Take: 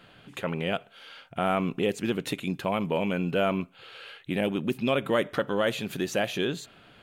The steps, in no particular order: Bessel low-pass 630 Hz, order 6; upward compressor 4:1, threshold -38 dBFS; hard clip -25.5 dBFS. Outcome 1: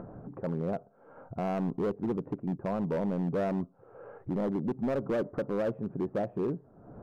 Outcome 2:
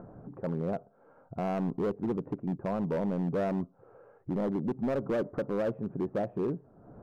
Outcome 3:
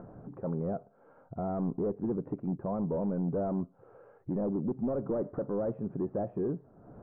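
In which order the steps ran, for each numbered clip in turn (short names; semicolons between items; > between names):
Bessel low-pass > upward compressor > hard clip; upward compressor > Bessel low-pass > hard clip; upward compressor > hard clip > Bessel low-pass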